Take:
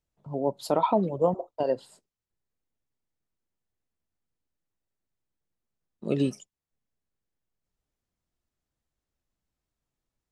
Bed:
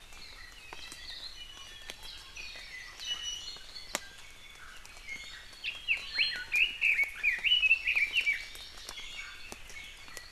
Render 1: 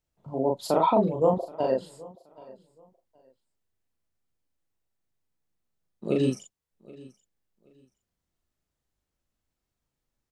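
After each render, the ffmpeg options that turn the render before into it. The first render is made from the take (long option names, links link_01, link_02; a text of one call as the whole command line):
ffmpeg -i in.wav -filter_complex "[0:a]asplit=2[link_01][link_02];[link_02]adelay=38,volume=-2dB[link_03];[link_01][link_03]amix=inputs=2:normalize=0,aecho=1:1:775|1550:0.0794|0.0183" out.wav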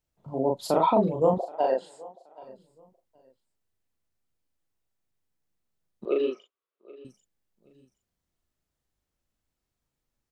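ffmpeg -i in.wav -filter_complex "[0:a]asettb=1/sr,asplit=3[link_01][link_02][link_03];[link_01]atrim=end=1.404[link_04];[link_02]atrim=start=1.4:end=2.43,asetpts=PTS-STARTPTS,afade=type=in:duration=0.004:curve=qsin,afade=type=out:start_time=1.026:duration=0.004:curve=qsin,highpass=380,equalizer=frequency=770:width_type=q:width=4:gain=9,equalizer=frequency=1200:width_type=q:width=4:gain=-3,equalizer=frequency=1600:width_type=q:width=4:gain=5,equalizer=frequency=4900:width_type=q:width=4:gain=-4,lowpass=frequency=9000:width=0.5412,lowpass=frequency=9000:width=1.3066[link_05];[link_03]atrim=start=2.426[link_06];[link_04][link_05]acrossfade=duration=0.004:curve1=hsin:curve2=qsin[link_07];[link_07][link_06]acrossfade=duration=0.004:curve1=qsin:curve2=hsin,asettb=1/sr,asplit=3[link_08][link_09][link_10];[link_08]atrim=end=6.054[link_11];[link_09]atrim=start=6.05:end=7.05,asetpts=PTS-STARTPTS,afade=type=in:duration=0.004:curve=qsin,afade=type=out:start_time=0.996:duration=0.004:curve=qsin,highpass=frequency=370:width=0.5412,highpass=frequency=370:width=1.3066,equalizer=frequency=380:width_type=q:width=4:gain=6,equalizer=frequency=820:width_type=q:width=4:gain=-8,equalizer=frequency=1200:width_type=q:width=4:gain=9,equalizer=frequency=1800:width_type=q:width=4:gain=-7,lowpass=frequency=3300:width=0.5412,lowpass=frequency=3300:width=1.3066[link_12];[link_10]atrim=start=7.046[link_13];[link_11][link_12]acrossfade=duration=0.004:curve1=hsin:curve2=qsin[link_14];[link_14][link_13]acrossfade=duration=0.004:curve1=qsin:curve2=hsin" out.wav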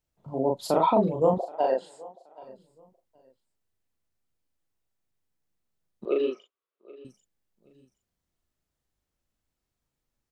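ffmpeg -i in.wav -af anull out.wav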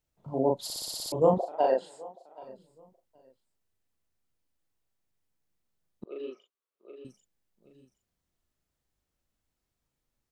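ffmpeg -i in.wav -filter_complex "[0:a]asplit=10[link_01][link_02][link_03][link_04][link_05][link_06][link_07][link_08][link_09][link_10];[link_01]atrim=end=0.702[link_11];[link_02]atrim=start=0.638:end=0.702[link_12];[link_03]atrim=start=0.638:end=0.702[link_13];[link_04]atrim=start=0.638:end=0.702[link_14];[link_05]atrim=start=0.638:end=0.702[link_15];[link_06]atrim=start=0.638:end=0.702[link_16];[link_07]atrim=start=0.638:end=0.702[link_17];[link_08]atrim=start=0.638:end=0.702[link_18];[link_09]atrim=start=1.118:end=6.04,asetpts=PTS-STARTPTS,afade=type=out:start_time=4.918:duration=0.004:curve=hsin:silence=0.0707946[link_19];[link_10]atrim=start=6.04,asetpts=PTS-STARTPTS,afade=type=in:duration=1:silence=0.0707946[link_20];[link_11][link_12]acrossfade=duration=0.004:curve1=hsin:curve2=hsin[link_21];[link_21][link_13]acrossfade=duration=0.004:curve1=hsin:curve2=hsin[link_22];[link_22][link_14]acrossfade=duration=0.004:curve1=hsin:curve2=hsin[link_23];[link_23][link_15]acrossfade=duration=0.004:curve1=hsin:curve2=hsin[link_24];[link_24][link_16]acrossfade=duration=0.004:curve1=hsin:curve2=hsin[link_25];[link_25][link_17]acrossfade=duration=0.004:curve1=hsin:curve2=hsin[link_26];[link_26][link_18]acrossfade=duration=0.004:curve1=hsin:curve2=hsin[link_27];[link_19][link_20]concat=n=2:v=0:a=1[link_28];[link_27][link_28]acrossfade=duration=0.004:curve1=hsin:curve2=hsin" out.wav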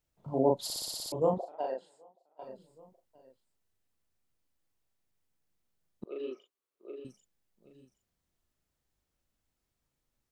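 ffmpeg -i in.wav -filter_complex "[0:a]asettb=1/sr,asplit=3[link_01][link_02][link_03];[link_01]atrim=end=6.314[link_04];[link_02]atrim=start=6.31:end=7,asetpts=PTS-STARTPTS,afade=type=in:duration=0.004:curve=qsin,afade=type=out:start_time=0.686:duration=0.004:curve=qsin,equalizer=frequency=330:width=1.5:gain=6[link_05];[link_03]atrim=start=6.996[link_06];[link_04][link_05]acrossfade=duration=0.004:curve1=hsin:curve2=qsin[link_07];[link_07][link_06]acrossfade=duration=0.004:curve1=qsin:curve2=hsin,asplit=2[link_08][link_09];[link_08]atrim=end=2.39,asetpts=PTS-STARTPTS,afade=type=out:start_time=0.74:duration=1.65:curve=qua:silence=0.141254[link_10];[link_09]atrim=start=2.39,asetpts=PTS-STARTPTS,afade=type=in:duration=0.004:curve=hsin:silence=0.141254[link_11];[link_10][link_11]concat=n=2:v=0:a=1" out.wav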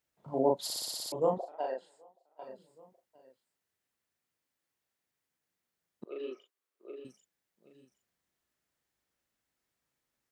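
ffmpeg -i in.wav -af "highpass=frequency=250:poles=1,equalizer=frequency=1800:width_type=o:width=0.76:gain=4.5" out.wav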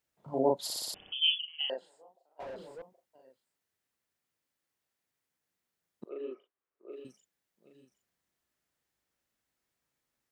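ffmpeg -i in.wav -filter_complex "[0:a]asettb=1/sr,asplit=3[link_01][link_02][link_03];[link_01]atrim=end=0.944[link_04];[link_02]atrim=start=0.94:end=1.7,asetpts=PTS-STARTPTS,afade=type=in:duration=0.004:curve=qsin,afade=type=out:start_time=0.756:duration=0.004:curve=qsin,lowpass=frequency=3100:width_type=q:width=0.5098,lowpass=frequency=3100:width_type=q:width=0.6013,lowpass=frequency=3100:width_type=q:width=0.9,lowpass=frequency=3100:width_type=q:width=2.563,afreqshift=-3600[link_05];[link_03]atrim=start=1.696[link_06];[link_04][link_05]acrossfade=duration=0.004:curve1=hsin:curve2=qsin[link_07];[link_07][link_06]acrossfade=duration=0.004:curve1=qsin:curve2=hsin,asettb=1/sr,asplit=3[link_08][link_09][link_10];[link_08]atrim=end=2.404[link_11];[link_09]atrim=start=2.4:end=2.82,asetpts=PTS-STARTPTS,afade=type=in:duration=0.004:curve=qsin,afade=type=out:start_time=0.416:duration=0.004:curve=qsin,asplit=2[link_12][link_13];[link_13]highpass=frequency=720:poles=1,volume=32dB,asoftclip=type=tanh:threshold=-35dB[link_14];[link_12][link_14]amix=inputs=2:normalize=0,lowpass=frequency=1100:poles=1,volume=-6dB[link_15];[link_10]atrim=start=2.816[link_16];[link_11][link_15]acrossfade=duration=0.004:curve1=hsin:curve2=qsin[link_17];[link_17][link_16]acrossfade=duration=0.004:curve1=qsin:curve2=hsin,asettb=1/sr,asplit=3[link_18][link_19][link_20];[link_18]atrim=end=6.094[link_21];[link_19]atrim=start=6.09:end=6.92,asetpts=PTS-STARTPTS,afade=type=in:duration=0.004:curve=qsin,afade=type=out:start_time=0.826:duration=0.004:curve=qsin,lowpass=1800[link_22];[link_20]atrim=start=6.916[link_23];[link_21][link_22]acrossfade=duration=0.004:curve1=hsin:curve2=qsin[link_24];[link_24][link_23]acrossfade=duration=0.004:curve1=qsin:curve2=hsin" out.wav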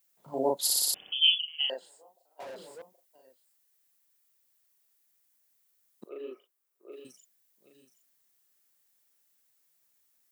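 ffmpeg -i in.wav -af "highpass=frequency=220:poles=1,aemphasis=mode=production:type=75kf" out.wav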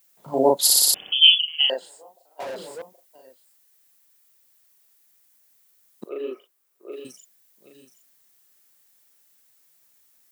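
ffmpeg -i in.wav -af "volume=10dB,alimiter=limit=-3dB:level=0:latency=1" out.wav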